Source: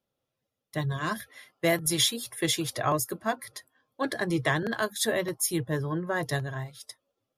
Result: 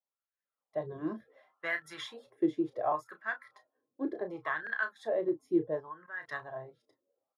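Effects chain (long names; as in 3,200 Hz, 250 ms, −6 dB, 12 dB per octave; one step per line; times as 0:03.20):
double-tracking delay 32 ms −10 dB
0:05.80–0:06.28: output level in coarse steps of 19 dB
high-shelf EQ 7,000 Hz −8 dB
automatic gain control gain up to 13 dB
LFO wah 0.69 Hz 310–1,700 Hz, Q 4.2
level −7.5 dB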